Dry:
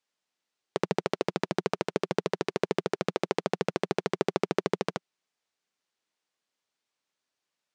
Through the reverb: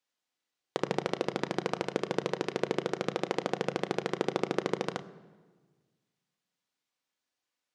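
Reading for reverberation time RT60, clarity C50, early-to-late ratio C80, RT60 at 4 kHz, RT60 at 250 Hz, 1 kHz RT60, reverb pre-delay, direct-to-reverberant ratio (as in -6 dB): 1.5 s, 16.5 dB, 17.5 dB, 1.1 s, 1.7 s, 1.4 s, 3 ms, 8.5 dB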